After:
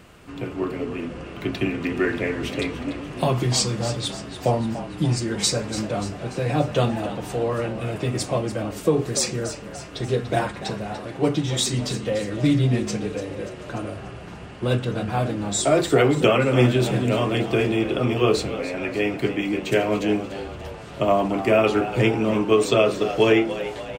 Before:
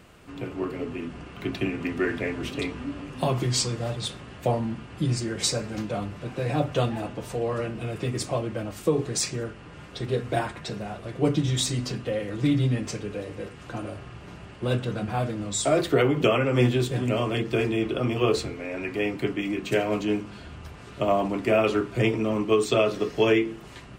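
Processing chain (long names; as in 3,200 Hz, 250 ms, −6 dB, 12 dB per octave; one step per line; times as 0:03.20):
0:10.97–0:11.73: low-shelf EQ 180 Hz −7 dB
on a send: echo with shifted repeats 291 ms, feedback 52%, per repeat +79 Hz, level −12.5 dB
on the sum: level +3.5 dB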